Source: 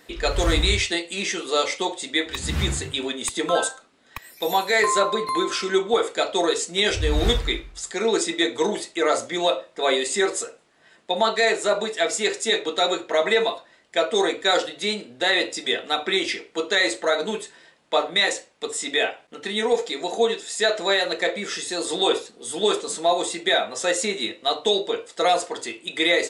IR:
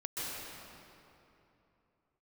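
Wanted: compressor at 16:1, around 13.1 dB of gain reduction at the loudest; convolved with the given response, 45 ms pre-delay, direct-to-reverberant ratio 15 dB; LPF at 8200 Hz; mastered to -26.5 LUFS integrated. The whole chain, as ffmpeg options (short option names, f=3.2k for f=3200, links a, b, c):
-filter_complex "[0:a]lowpass=8.2k,acompressor=threshold=-28dB:ratio=16,asplit=2[a][b];[1:a]atrim=start_sample=2205,adelay=45[c];[b][c]afir=irnorm=-1:irlink=0,volume=-19dB[d];[a][d]amix=inputs=2:normalize=0,volume=6dB"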